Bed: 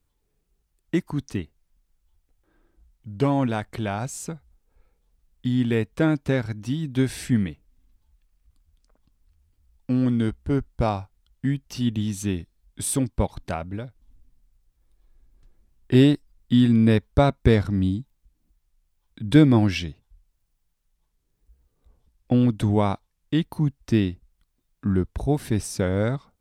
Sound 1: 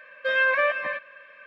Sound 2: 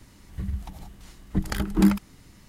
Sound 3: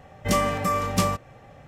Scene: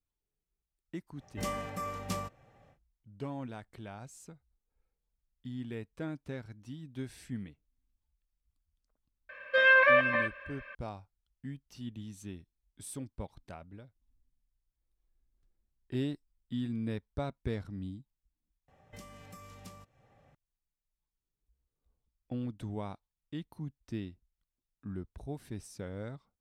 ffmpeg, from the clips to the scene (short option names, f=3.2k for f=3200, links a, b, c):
-filter_complex "[3:a]asplit=2[a][b];[0:a]volume=-18dB[c];[b]acrossover=split=200|2600[d][e][f];[d]acompressor=threshold=-37dB:ratio=4[g];[e]acompressor=threshold=-39dB:ratio=4[h];[f]acompressor=threshold=-41dB:ratio=4[i];[g][h][i]amix=inputs=3:normalize=0[j];[c]asplit=2[k][l];[k]atrim=end=18.684[m];[j]atrim=end=1.67,asetpts=PTS-STARTPTS,volume=-16dB[n];[l]atrim=start=20.346[o];[a]atrim=end=1.67,asetpts=PTS-STARTPTS,volume=-13.5dB,afade=t=in:d=0.1,afade=t=out:st=1.57:d=0.1,adelay=1120[p];[1:a]atrim=end=1.46,asetpts=PTS-STARTPTS,afade=t=in:d=0.004:c=hsin,afade=t=out:st=1.456:d=0.004:c=hsin,adelay=9290[q];[m][n]acrossfade=d=0.004:c1=hsin:c2=hsin[r];[r][o]acrossfade=d=0.004:c1=hsin:c2=hsin[s];[s][p][q]amix=inputs=3:normalize=0"